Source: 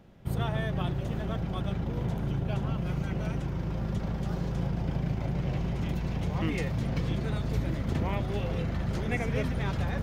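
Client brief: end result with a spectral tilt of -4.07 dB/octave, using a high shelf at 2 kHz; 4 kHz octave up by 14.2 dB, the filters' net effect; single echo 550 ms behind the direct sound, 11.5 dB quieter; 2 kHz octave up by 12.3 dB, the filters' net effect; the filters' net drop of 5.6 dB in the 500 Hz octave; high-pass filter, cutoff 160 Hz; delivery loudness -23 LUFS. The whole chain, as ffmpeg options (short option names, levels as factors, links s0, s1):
-af "highpass=160,equalizer=f=500:t=o:g=-8.5,highshelf=f=2000:g=7.5,equalizer=f=2000:t=o:g=8.5,equalizer=f=4000:t=o:g=8,aecho=1:1:550:0.266,volume=2.24"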